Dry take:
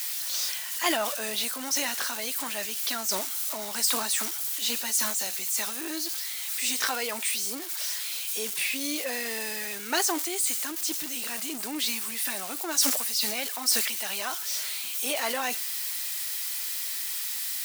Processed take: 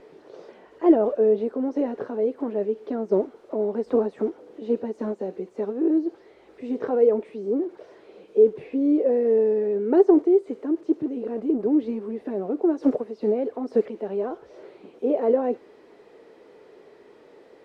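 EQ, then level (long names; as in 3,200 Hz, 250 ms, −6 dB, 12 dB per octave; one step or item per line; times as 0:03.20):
low-pass with resonance 430 Hz, resonance Q 4.9
low-shelf EQ 63 Hz +8 dB
low-shelf EQ 160 Hz +6 dB
+8.0 dB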